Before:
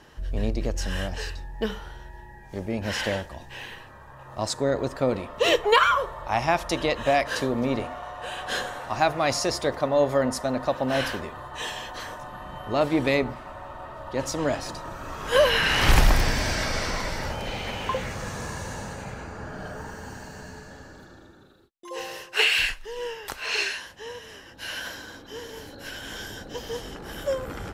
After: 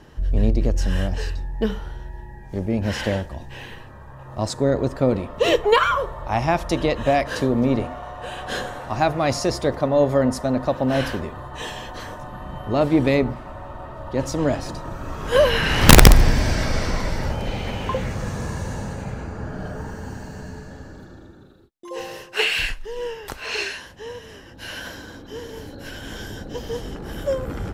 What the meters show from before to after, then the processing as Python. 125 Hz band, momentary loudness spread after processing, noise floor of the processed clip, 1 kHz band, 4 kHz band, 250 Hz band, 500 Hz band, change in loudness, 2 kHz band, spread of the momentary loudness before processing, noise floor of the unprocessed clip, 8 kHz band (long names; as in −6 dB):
+9.0 dB, 19 LU, −42 dBFS, +2.0 dB, +1.0 dB, +7.5 dB, +4.0 dB, +4.5 dB, +1.0 dB, 19 LU, −47 dBFS, +5.0 dB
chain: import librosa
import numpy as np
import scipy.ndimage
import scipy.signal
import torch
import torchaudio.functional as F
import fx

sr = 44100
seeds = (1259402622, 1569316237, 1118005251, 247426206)

y = fx.low_shelf(x, sr, hz=490.0, db=10.0)
y = (np.mod(10.0 ** (0.0 / 20.0) * y + 1.0, 2.0) - 1.0) / 10.0 ** (0.0 / 20.0)
y = F.gain(torch.from_numpy(y), -1.0).numpy()